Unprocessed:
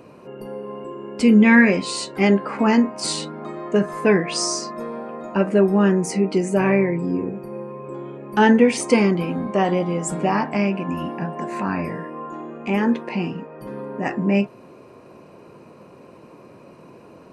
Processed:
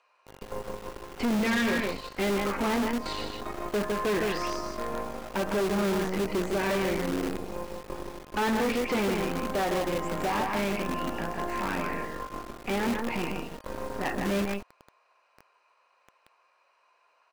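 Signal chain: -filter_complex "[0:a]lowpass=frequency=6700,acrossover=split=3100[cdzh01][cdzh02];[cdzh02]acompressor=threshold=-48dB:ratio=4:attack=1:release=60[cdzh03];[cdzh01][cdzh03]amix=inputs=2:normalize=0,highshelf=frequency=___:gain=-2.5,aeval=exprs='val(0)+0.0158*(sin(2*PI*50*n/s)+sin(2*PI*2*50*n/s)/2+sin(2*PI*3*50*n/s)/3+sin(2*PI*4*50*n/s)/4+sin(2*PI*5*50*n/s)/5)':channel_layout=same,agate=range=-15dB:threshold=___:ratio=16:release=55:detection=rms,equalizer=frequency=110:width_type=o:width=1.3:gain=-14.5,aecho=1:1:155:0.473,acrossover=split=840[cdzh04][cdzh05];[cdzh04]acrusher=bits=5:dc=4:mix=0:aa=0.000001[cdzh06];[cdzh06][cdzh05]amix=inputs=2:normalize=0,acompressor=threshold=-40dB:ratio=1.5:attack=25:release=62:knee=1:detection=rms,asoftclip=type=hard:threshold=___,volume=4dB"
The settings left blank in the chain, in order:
4700, -30dB, -28dB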